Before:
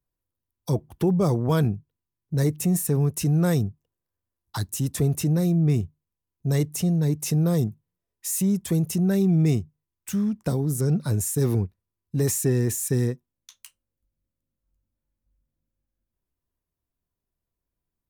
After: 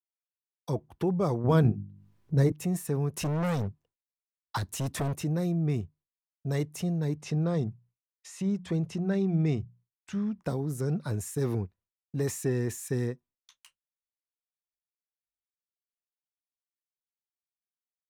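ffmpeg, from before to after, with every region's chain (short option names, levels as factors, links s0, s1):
-filter_complex "[0:a]asettb=1/sr,asplit=3[s0][s1][s2];[s0]atrim=end=1.444[s3];[s1]atrim=start=1.44:end=2.52,asetpts=PTS-STARTPTS,afade=t=in:d=0.004:c=qsin,afade=t=out:st=1.076:d=0.004:c=qsin,lowshelf=f=440:g=9,bandreject=f=50:t=h:w=6,bandreject=f=100:t=h:w=6,bandreject=f=150:t=h:w=6,bandreject=f=200:t=h:w=6,bandreject=f=250:t=h:w=6,bandreject=f=300:t=h:w=6,bandreject=f=350:t=h:w=6,acompressor=mode=upward:threshold=0.0282:ratio=2.5:attack=3.2:release=140:knee=2.83:detection=peak[s4];[s2]atrim=start=2.516[s5];[s3][s4]acrossfade=d=0.004:c1=hsin:c2=qsin[s6];[s6][s5]acrossfade=d=0.004:c1=qsin:c2=hsin,asettb=1/sr,asplit=3[s7][s8][s9];[s7]atrim=end=3.134[s10];[s8]atrim=start=3.13:end=5.14,asetpts=PTS-STARTPTS,afade=t=in:d=0.004:c=qsin,afade=t=out:st=2.006:d=0.004:c=qsin,acontrast=41,asoftclip=type=hard:threshold=0.1[s11];[s9]atrim=start=5.136[s12];[s10][s11]acrossfade=d=0.004:c1=hsin:c2=qsin[s13];[s13][s12]acrossfade=d=0.004:c1=qsin:c2=hsin,asettb=1/sr,asplit=3[s14][s15][s16];[s14]atrim=end=7.154[s17];[s15]atrim=start=7.15:end=10.42,asetpts=PTS-STARTPTS,afade=t=in:d=0.004:c=qsin,afade=t=out:st=3.266:d=0.004:c=qsin,lowpass=5500,equalizer=f=95:t=o:w=1.4:g=2.5,bandreject=f=60:t=h:w=6,bandreject=f=120:t=h:w=6,bandreject=f=180:t=h:w=6[s18];[s16]atrim=start=10.416[s19];[s17][s18]acrossfade=d=0.004:c1=hsin:c2=qsin[s20];[s20][s19]acrossfade=d=0.004:c1=qsin:c2=hsin,agate=range=0.0224:threshold=0.00447:ratio=3:detection=peak,lowpass=f=2100:p=1,lowshelf=f=450:g=-8.5"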